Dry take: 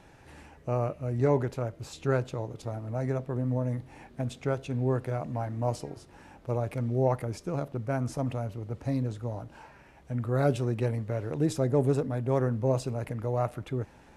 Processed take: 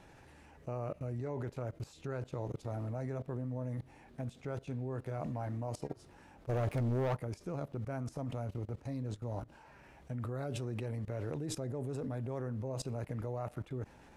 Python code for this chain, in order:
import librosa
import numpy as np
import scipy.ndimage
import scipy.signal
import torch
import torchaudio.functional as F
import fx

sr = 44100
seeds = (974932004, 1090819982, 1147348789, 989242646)

y = fx.level_steps(x, sr, step_db=20)
y = fx.leveller(y, sr, passes=3, at=(6.49, 7.15))
y = F.gain(torch.from_numpy(y), 2.0).numpy()